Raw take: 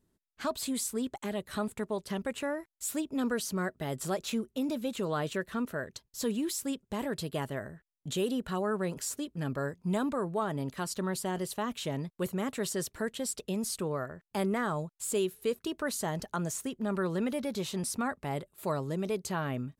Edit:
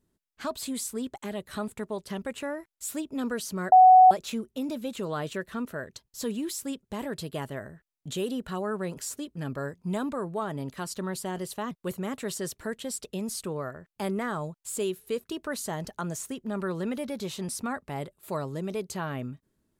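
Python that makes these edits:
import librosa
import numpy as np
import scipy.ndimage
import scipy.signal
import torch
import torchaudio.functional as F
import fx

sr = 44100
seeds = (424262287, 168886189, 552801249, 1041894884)

y = fx.edit(x, sr, fx.bleep(start_s=3.72, length_s=0.39, hz=744.0, db=-10.5),
    fx.cut(start_s=11.71, length_s=0.35), tone=tone)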